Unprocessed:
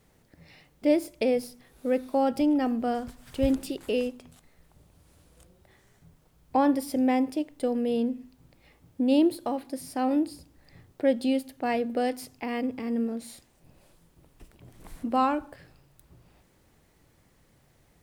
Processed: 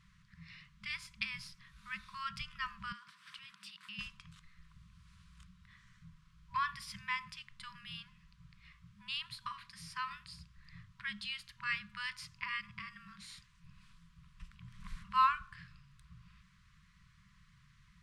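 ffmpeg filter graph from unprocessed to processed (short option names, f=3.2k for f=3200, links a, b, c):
-filter_complex "[0:a]asettb=1/sr,asplit=3[a][b][c];[a]atrim=end=2.924[d];[b]atrim=start=2.92:end=3.99,asetpts=PTS-STARTPTS,afade=t=in:d=0.004:c=qsin,afade=t=out:st=1.066:d=0.004:c=qsin,highpass=f=240:w=0.5412,highpass=f=240:w=1.3066,equalizer=f=6.9k:w=4.4:g=-7,acompressor=threshold=-49dB:ratio=1.5:attack=3.2:release=140:knee=1:detection=peak[e];[c]atrim=start=3.986[f];[d][e]acrossfade=d=0.004:c1=hsin:c2=qsin[g];[g][f]acrossfade=d=0.004:c1=qsin:c2=hsin,lowpass=4.8k,afftfilt=real='re*(1-between(b*sr/4096,210,970))':imag='im*(1-between(b*sr/4096,210,970))':win_size=4096:overlap=0.75,equalizer=f=95:t=o:w=0.61:g=-4.5,volume=1dB"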